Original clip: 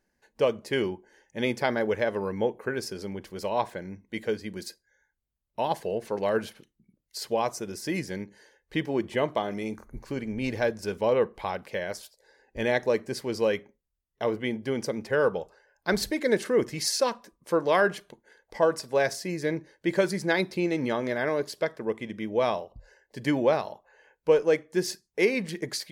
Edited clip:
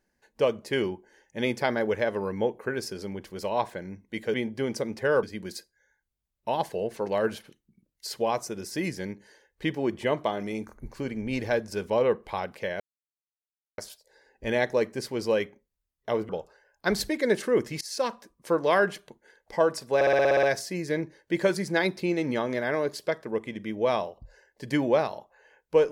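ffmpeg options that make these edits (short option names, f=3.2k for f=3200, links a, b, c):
-filter_complex "[0:a]asplit=14[a][b][c][d][e][f][g][h][i][j][k][l][m][n];[a]atrim=end=4.342[o];[b]atrim=start=14.418:end=15.312[p];[c]atrim=start=4.338:end=11.91,asetpts=PTS-STARTPTS,afade=t=out:st=7.568:d=0.004:c=hsin,apad=pad_dur=0.98[q];[d]atrim=start=11.91:end=14.422,asetpts=PTS-STARTPTS,afade=t=in:d=0.004:c=hsin[r];[e]atrim=start=15.308:end=16.83,asetpts=PTS-STARTPTS,afade=t=out:st=1.518:d=0.004:c=hsin:silence=0.0630957[s];[f]atrim=start=16.83:end=19.032,asetpts=PTS-STARTPTS,afade=t=in:d=0.29:silence=0.0630957[t];[g]atrim=start=18.968:end=19.032[u];[h]atrim=start=18.968:end=19.032[v];[i]atrim=start=18.968:end=19.032[w];[j]atrim=start=18.968:end=19.032[x];[k]atrim=start=18.968:end=19.032[y];[l]atrim=start=18.968:end=19.032[z];[m]atrim=start=18.968:end=19.032[aa];[n]atrim=start=18.968[ab];[o][p]acrossfade=d=0.004:c1=hsin:c2=hsin[ac];[q][r]concat=n=2:v=0:a=1[ad];[ac][ad]acrossfade=d=0.004:c1=hsin:c2=hsin[ae];[s][t]concat=n=2:v=0:a=1[af];[ae][af]acrossfade=d=0.004:c1=hsin:c2=hsin[ag];[ag][u]acrossfade=d=0.004:c1=hsin:c2=hsin[ah];[ah][v]acrossfade=d=0.004:c1=hsin:c2=hsin[ai];[ai][w]acrossfade=d=0.004:c1=hsin:c2=hsin[aj];[aj][x]acrossfade=d=0.004:c1=hsin:c2=hsin[ak];[ak][y]acrossfade=d=0.004:c1=hsin:c2=hsin[al];[al][z]acrossfade=d=0.004:c1=hsin:c2=hsin[am];[am][aa]acrossfade=d=0.004:c1=hsin:c2=hsin[an];[an][ab]acrossfade=d=0.004:c1=hsin:c2=hsin"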